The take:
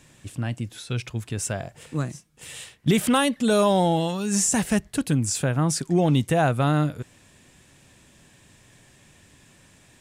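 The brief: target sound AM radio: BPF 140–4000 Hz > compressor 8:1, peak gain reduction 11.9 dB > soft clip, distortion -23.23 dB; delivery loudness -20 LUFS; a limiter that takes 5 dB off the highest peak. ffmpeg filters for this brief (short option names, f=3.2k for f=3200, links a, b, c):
-af "alimiter=limit=-15dB:level=0:latency=1,highpass=140,lowpass=4k,acompressor=threshold=-30dB:ratio=8,asoftclip=threshold=-22.5dB,volume=16.5dB"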